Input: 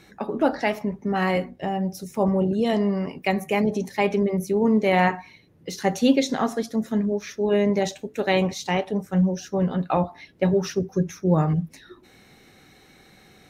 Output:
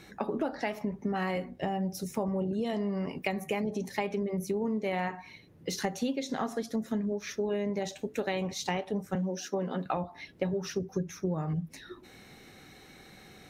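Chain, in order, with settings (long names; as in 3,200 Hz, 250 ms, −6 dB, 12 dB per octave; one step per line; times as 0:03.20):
0:09.15–0:09.86: high-pass filter 210 Hz 24 dB per octave
downward compressor 10 to 1, threshold −28 dBFS, peak gain reduction 16 dB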